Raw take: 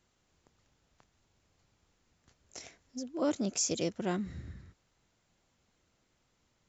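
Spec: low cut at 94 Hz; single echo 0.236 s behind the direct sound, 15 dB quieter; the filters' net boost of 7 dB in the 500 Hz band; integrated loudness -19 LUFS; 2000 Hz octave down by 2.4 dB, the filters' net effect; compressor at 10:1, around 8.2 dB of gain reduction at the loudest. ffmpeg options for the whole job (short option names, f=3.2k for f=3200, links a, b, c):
-af "highpass=94,equalizer=f=500:t=o:g=8.5,equalizer=f=2k:t=o:g=-4,acompressor=threshold=-28dB:ratio=10,aecho=1:1:236:0.178,volume=17dB"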